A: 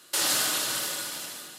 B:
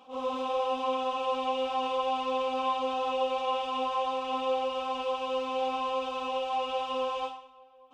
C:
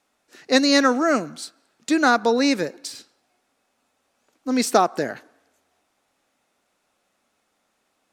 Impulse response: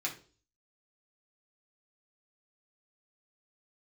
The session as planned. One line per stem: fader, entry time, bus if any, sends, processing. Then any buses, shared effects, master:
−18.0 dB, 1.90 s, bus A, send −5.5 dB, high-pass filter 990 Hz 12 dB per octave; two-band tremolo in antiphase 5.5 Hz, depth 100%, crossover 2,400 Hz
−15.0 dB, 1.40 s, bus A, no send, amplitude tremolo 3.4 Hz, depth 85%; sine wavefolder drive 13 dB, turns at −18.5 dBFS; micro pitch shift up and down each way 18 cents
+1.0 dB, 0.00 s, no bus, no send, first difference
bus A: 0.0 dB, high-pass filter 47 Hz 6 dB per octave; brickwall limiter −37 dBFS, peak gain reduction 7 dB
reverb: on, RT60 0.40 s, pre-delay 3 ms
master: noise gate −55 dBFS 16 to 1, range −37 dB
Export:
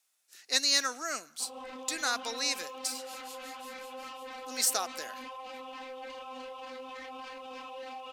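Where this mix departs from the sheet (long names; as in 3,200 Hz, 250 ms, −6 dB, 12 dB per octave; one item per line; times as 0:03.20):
stem A: entry 1.90 s → 2.85 s
stem B −15.0 dB → −5.5 dB
master: missing noise gate −55 dBFS 16 to 1, range −37 dB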